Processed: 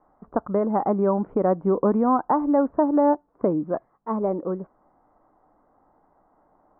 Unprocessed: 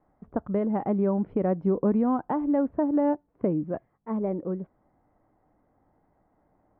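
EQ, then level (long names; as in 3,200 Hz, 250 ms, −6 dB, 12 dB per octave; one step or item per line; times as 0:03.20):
low-pass with resonance 1,200 Hz, resonance Q 2
parametric band 92 Hz −10.5 dB 2 octaves
+5.0 dB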